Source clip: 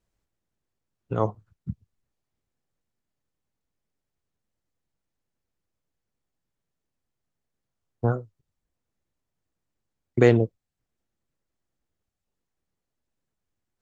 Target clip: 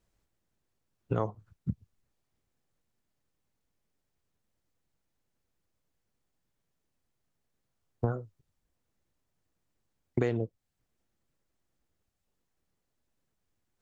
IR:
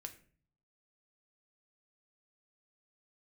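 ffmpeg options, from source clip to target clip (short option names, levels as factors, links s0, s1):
-af "acompressor=threshold=0.0398:ratio=8,volume=1.33"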